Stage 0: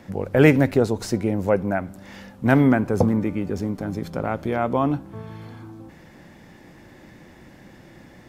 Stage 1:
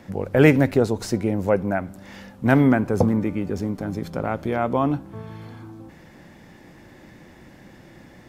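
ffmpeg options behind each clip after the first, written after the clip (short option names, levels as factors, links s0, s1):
-af anull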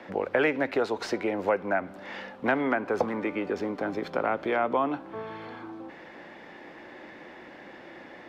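-filter_complex "[0:a]acrossover=split=300 4000:gain=0.0794 1 0.0794[s0][s1][s2];[s0][s1][s2]amix=inputs=3:normalize=0,acrossover=split=350|860[s3][s4][s5];[s3]acompressor=threshold=0.0112:ratio=4[s6];[s4]acompressor=threshold=0.0158:ratio=4[s7];[s5]acompressor=threshold=0.0224:ratio=4[s8];[s6][s7][s8]amix=inputs=3:normalize=0,volume=1.88"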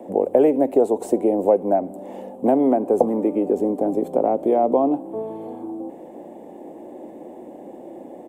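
-af "firequalizer=gain_entry='entry(110,0);entry(240,11);entry(730,9);entry(1400,-20);entry(2900,-12);entry(4900,-16);entry(8000,14)':delay=0.05:min_phase=1"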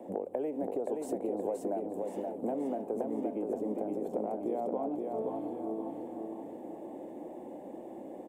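-filter_complex "[0:a]acompressor=threshold=0.0562:ratio=4,asplit=2[s0][s1];[s1]aecho=0:1:524|1048|1572|2096|2620|3144:0.668|0.327|0.16|0.0786|0.0385|0.0189[s2];[s0][s2]amix=inputs=2:normalize=0,volume=0.398"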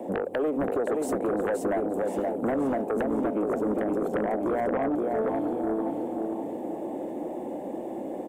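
-af "aeval=exprs='0.106*sin(PI/2*2.82*val(0)/0.106)':c=same,volume=0.75"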